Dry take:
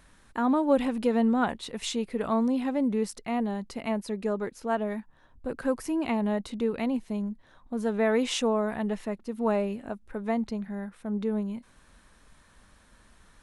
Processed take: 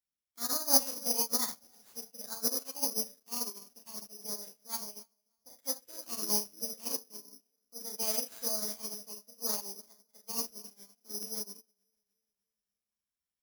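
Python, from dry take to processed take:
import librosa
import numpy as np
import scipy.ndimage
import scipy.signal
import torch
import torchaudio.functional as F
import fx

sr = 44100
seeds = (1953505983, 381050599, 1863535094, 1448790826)

y = fx.spec_quant(x, sr, step_db=15)
y = scipy.signal.sosfilt(scipy.signal.butter(2, 45.0, 'highpass', fs=sr, output='sos'), y)
y = fx.high_shelf(y, sr, hz=7300.0, db=-5.5)
y = fx.echo_feedback(y, sr, ms=298, feedback_pct=56, wet_db=-15.5)
y = fx.rev_schroeder(y, sr, rt60_s=0.37, comb_ms=30, drr_db=1.0)
y = fx.formant_shift(y, sr, semitones=5)
y = (np.kron(y[::8], np.eye(8)[0]) * 8)[:len(y)]
y = fx.upward_expand(y, sr, threshold_db=-31.0, expansion=2.5)
y = F.gain(torch.from_numpy(y), -11.0).numpy()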